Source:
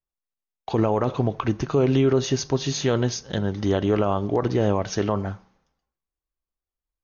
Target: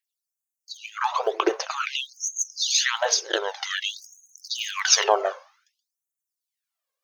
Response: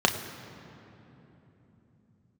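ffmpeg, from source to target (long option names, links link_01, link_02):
-filter_complex "[0:a]aphaser=in_gain=1:out_gain=1:delay=1.9:decay=0.6:speed=0.65:type=triangular,asettb=1/sr,asplit=3[link_01][link_02][link_03];[link_01]atrim=end=3.844[link_04];[link_02]atrim=start=3.84:end=5.04,asetpts=PTS-STARTPTS,afade=type=in:duration=0.004:curve=qsin,afade=type=out:start_time=1.196:duration=0.004:curve=qsin,tiltshelf=frequency=970:gain=-8[link_05];[link_03]atrim=start=5.036[link_06];[link_04][link_05]acrossfade=duration=0.004:curve1=hsin:curve2=qsin[link_07];[link_07][link_06]acrossfade=duration=0.004:curve1=qsin:curve2=hsin,afftfilt=real='re*gte(b*sr/1024,330*pow(6200/330,0.5+0.5*sin(2*PI*0.53*pts/sr)))':imag='im*gte(b*sr/1024,330*pow(6200/330,0.5+0.5*sin(2*PI*0.53*pts/sr)))':win_size=1024:overlap=0.75,volume=7.5dB"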